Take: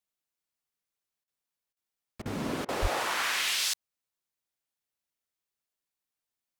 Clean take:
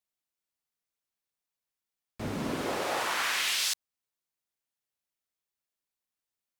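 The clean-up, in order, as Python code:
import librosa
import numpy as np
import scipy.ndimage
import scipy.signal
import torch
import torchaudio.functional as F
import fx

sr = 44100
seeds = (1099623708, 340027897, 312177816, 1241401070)

y = fx.fix_deplosive(x, sr, at_s=(2.81,))
y = fx.fix_interpolate(y, sr, at_s=(1.24, 1.73, 2.22, 2.65), length_ms=35.0)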